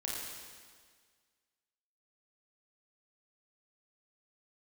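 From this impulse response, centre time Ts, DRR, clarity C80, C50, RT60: 108 ms, -5.0 dB, 0.5 dB, -1.5 dB, 1.7 s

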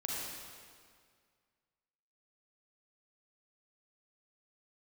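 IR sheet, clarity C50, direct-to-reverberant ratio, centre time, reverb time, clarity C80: -3.0 dB, -4.5 dB, 129 ms, 2.0 s, -1.0 dB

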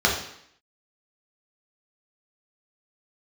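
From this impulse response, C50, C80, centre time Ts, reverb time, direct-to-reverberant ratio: 5.5 dB, 8.5 dB, 32 ms, 0.70 s, -2.0 dB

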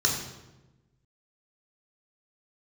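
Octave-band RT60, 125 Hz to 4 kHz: 1.6 s, 1.4 s, 1.2 s, 0.95 s, 0.85 s, 0.75 s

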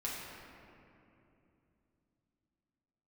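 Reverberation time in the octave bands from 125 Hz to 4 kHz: 4.2 s, 4.1 s, 3.2 s, 2.6 s, 2.3 s, 1.5 s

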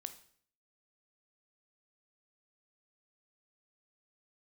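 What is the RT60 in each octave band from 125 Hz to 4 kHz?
0.65 s, 0.65 s, 0.60 s, 0.55 s, 0.55 s, 0.50 s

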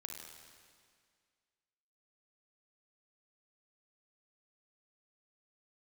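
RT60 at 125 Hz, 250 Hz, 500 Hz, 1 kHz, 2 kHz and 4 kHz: 1.9 s, 2.1 s, 2.0 s, 2.0 s, 2.0 s, 1.9 s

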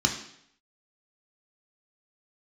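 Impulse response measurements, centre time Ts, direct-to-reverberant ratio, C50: 22 ms, 1.5 dB, 8.0 dB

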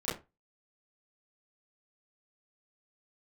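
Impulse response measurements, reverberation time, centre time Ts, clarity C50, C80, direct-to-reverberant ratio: 0.25 s, 41 ms, 7.5 dB, 16.0 dB, -13.0 dB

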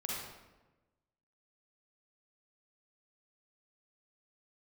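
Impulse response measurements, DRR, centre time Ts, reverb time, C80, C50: -4.5 dB, 85 ms, 1.1 s, 1.5 dB, -2.5 dB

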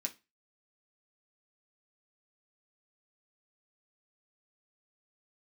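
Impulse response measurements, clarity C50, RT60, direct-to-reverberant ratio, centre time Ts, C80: 17.5 dB, 0.25 s, 1.0 dB, 7 ms, 26.5 dB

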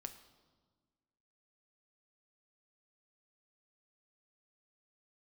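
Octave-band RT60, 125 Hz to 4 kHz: 1.9 s, 1.9 s, 1.6 s, 1.4 s, 1.0 s, 1.1 s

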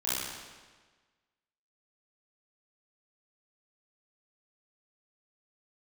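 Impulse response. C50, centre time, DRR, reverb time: -3.5 dB, 112 ms, -11.0 dB, 1.4 s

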